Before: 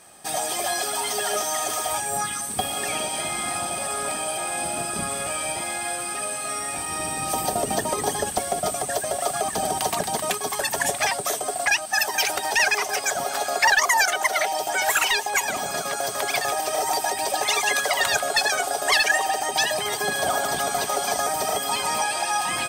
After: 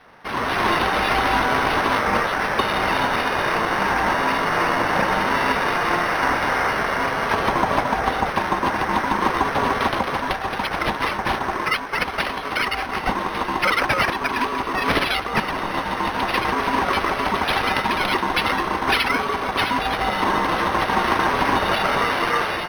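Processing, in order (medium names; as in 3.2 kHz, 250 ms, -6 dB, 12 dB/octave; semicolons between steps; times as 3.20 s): resonant low shelf 710 Hz +8.5 dB, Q 1.5; ring modulator 360 Hz; tilt EQ +2.5 dB/octave; level rider; flange 1.5 Hz, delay 1.5 ms, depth 9.6 ms, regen -73%; decimation joined by straight lines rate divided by 6×; trim +2 dB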